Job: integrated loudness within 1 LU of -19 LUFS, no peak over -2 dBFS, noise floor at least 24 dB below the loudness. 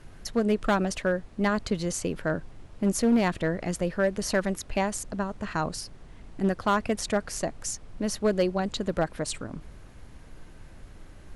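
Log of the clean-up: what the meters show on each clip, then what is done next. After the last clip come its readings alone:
clipped 0.6%; flat tops at -16.5 dBFS; noise floor -48 dBFS; noise floor target -53 dBFS; loudness -28.5 LUFS; peak -16.5 dBFS; loudness target -19.0 LUFS
-> clip repair -16.5 dBFS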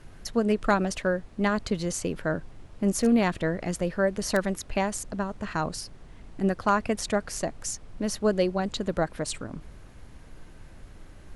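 clipped 0.0%; noise floor -48 dBFS; noise floor target -52 dBFS
-> noise print and reduce 6 dB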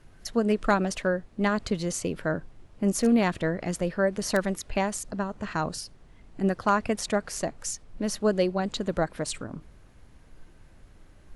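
noise floor -54 dBFS; loudness -28.0 LUFS; peak -8.0 dBFS; loudness target -19.0 LUFS
-> gain +9 dB; limiter -2 dBFS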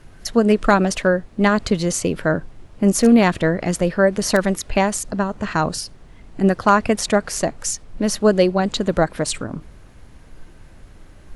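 loudness -19.0 LUFS; peak -2.0 dBFS; noise floor -45 dBFS

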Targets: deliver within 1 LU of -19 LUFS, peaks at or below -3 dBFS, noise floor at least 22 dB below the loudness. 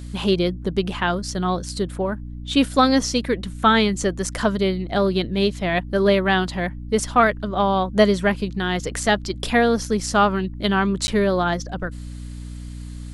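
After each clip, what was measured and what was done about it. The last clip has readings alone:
dropouts 1; longest dropout 10 ms; hum 60 Hz; harmonics up to 300 Hz; hum level -31 dBFS; loudness -21.0 LUFS; peak -3.5 dBFS; loudness target -19.0 LUFS
-> interpolate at 11.07, 10 ms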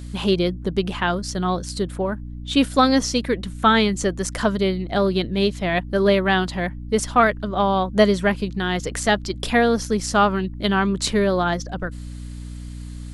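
dropouts 0; hum 60 Hz; harmonics up to 300 Hz; hum level -31 dBFS
-> de-hum 60 Hz, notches 5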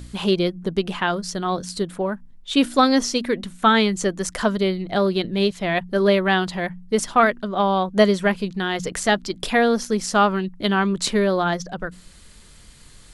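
hum none; loudness -21.0 LUFS; peak -3.5 dBFS; loudness target -19.0 LUFS
-> gain +2 dB; limiter -3 dBFS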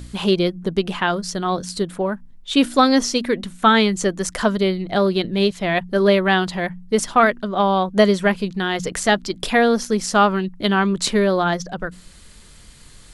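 loudness -19.0 LUFS; peak -3.0 dBFS; noise floor -45 dBFS

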